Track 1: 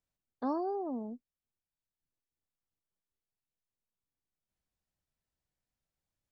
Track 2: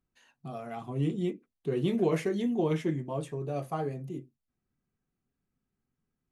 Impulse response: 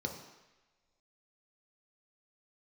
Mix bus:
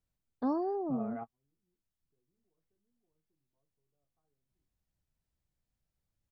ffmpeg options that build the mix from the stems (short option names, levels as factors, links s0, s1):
-filter_complex "[0:a]lowshelf=f=260:g=11,volume=0.794,asplit=2[s0][s1];[1:a]lowpass=f=1600:w=0.5412,lowpass=f=1600:w=1.3066,acompressor=threshold=0.0316:ratio=5,adelay=450,volume=0.75[s2];[s1]apad=whole_len=298404[s3];[s2][s3]sidechaingate=range=0.00355:threshold=0.00355:ratio=16:detection=peak[s4];[s0][s4]amix=inputs=2:normalize=0"